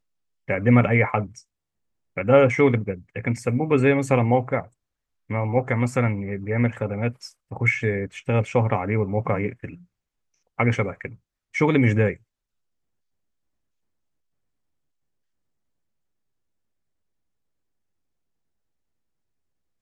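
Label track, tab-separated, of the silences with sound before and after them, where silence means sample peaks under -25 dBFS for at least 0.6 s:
1.240000	2.170000	silence
4.600000	5.310000	silence
9.650000	10.600000	silence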